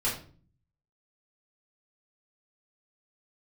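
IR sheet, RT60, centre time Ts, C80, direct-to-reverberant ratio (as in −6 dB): 0.45 s, 31 ms, 11.5 dB, −8.5 dB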